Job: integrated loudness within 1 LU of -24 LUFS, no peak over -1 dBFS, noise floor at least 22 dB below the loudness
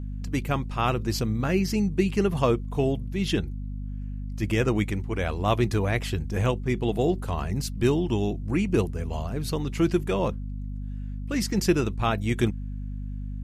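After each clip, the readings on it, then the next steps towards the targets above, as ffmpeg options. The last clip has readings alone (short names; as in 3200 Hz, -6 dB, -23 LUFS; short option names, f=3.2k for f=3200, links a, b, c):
hum 50 Hz; harmonics up to 250 Hz; hum level -30 dBFS; loudness -27.0 LUFS; peak -8.0 dBFS; loudness target -24.0 LUFS
-> -af "bandreject=f=50:t=h:w=6,bandreject=f=100:t=h:w=6,bandreject=f=150:t=h:w=6,bandreject=f=200:t=h:w=6,bandreject=f=250:t=h:w=6"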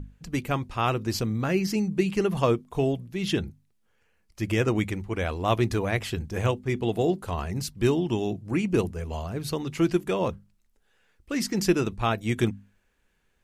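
hum none; loudness -27.0 LUFS; peak -9.0 dBFS; loudness target -24.0 LUFS
-> -af "volume=3dB"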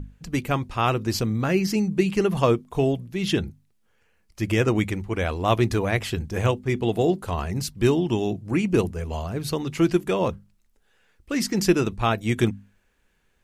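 loudness -24.0 LUFS; peak -6.0 dBFS; noise floor -66 dBFS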